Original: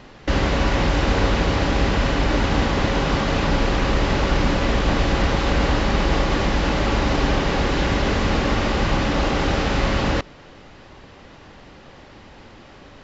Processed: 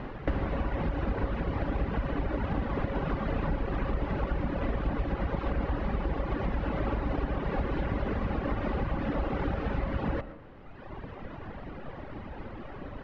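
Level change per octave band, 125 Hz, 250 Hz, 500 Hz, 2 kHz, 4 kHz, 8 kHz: -9.5 dB, -10.5 dB, -11.0 dB, -15.5 dB, -23.5 dB, no reading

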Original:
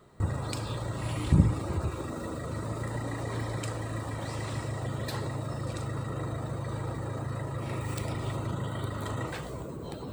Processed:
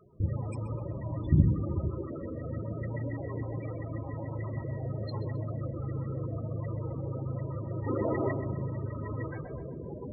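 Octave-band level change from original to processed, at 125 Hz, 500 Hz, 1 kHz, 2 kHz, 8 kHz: -0.5 dB, +1.0 dB, -5.5 dB, -7.0 dB, under -25 dB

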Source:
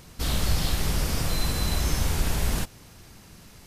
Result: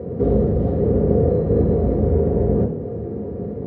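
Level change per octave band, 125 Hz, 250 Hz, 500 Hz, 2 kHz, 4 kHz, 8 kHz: +9.0 dB, +14.0 dB, +20.0 dB, under -15 dB, under -30 dB, under -40 dB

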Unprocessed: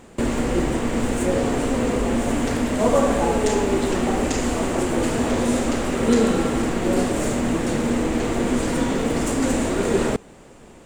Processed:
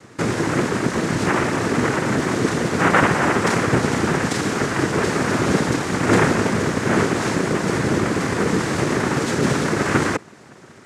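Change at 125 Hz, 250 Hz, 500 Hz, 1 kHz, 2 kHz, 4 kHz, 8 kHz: +5.5 dB, 0.0 dB, 0.0 dB, +4.5 dB, +8.5 dB, +3.5 dB, +1.0 dB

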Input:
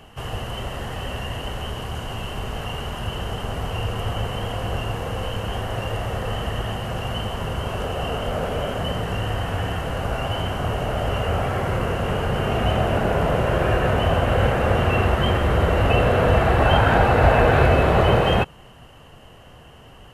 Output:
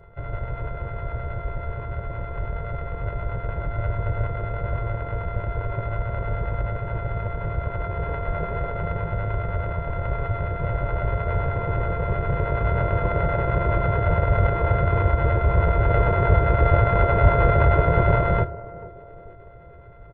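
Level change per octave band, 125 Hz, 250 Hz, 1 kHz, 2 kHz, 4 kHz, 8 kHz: +0.5 dB, -5.5 dB, -3.0 dB, -4.5 dB, under -15 dB, under -35 dB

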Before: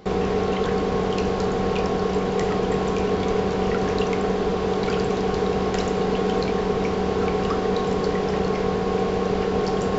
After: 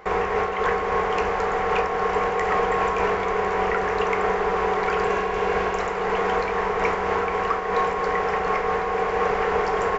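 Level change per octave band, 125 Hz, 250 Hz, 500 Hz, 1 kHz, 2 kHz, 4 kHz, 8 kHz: -9.5 dB, -10.0 dB, -1.5 dB, +5.0 dB, +7.0 dB, -4.0 dB, no reading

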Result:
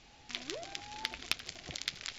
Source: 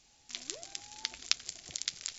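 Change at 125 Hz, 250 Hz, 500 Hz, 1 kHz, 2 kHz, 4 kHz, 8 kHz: +8.0 dB, +7.5 dB, +7.0 dB, +6.5 dB, +3.0 dB, -2.0 dB, no reading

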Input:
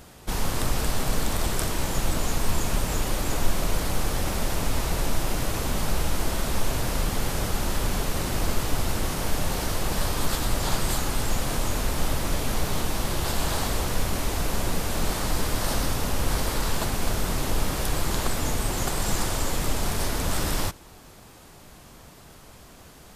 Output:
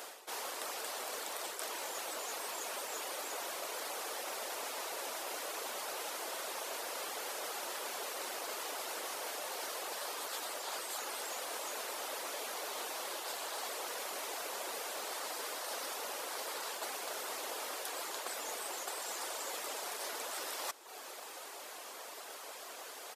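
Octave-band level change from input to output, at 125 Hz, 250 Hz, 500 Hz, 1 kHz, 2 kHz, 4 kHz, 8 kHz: under -40 dB, -24.5 dB, -11.0 dB, -9.5 dB, -9.5 dB, -9.5 dB, -9.5 dB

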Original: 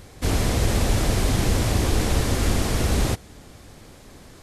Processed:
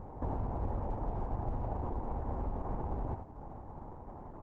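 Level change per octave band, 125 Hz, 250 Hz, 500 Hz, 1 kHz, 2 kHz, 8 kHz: -15.5 dB, -16.0 dB, -14.0 dB, -9.0 dB, -29.5 dB, under -40 dB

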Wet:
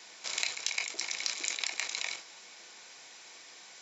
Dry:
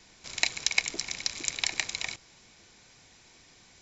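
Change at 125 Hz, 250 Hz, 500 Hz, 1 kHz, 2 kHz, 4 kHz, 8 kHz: under -15 dB, -9.5 dB, -3.5 dB, -2.5 dB, -4.0 dB, -3.0 dB, no reading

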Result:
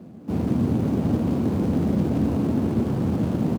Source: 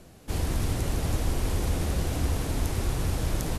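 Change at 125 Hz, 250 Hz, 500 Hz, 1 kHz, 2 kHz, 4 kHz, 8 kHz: +4.0 dB, +14.0 dB, +7.0 dB, +2.0 dB, -5.0 dB, no reading, under -10 dB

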